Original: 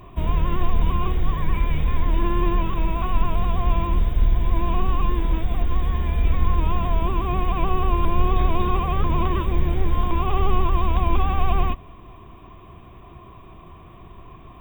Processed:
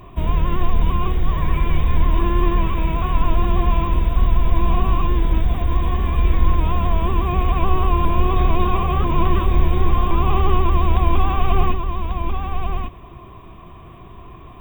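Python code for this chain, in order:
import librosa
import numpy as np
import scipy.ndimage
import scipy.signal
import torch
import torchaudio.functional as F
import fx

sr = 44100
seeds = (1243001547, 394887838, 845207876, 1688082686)

y = x + 10.0 ** (-6.0 / 20.0) * np.pad(x, (int(1141 * sr / 1000.0), 0))[:len(x)]
y = y * 10.0 ** (2.5 / 20.0)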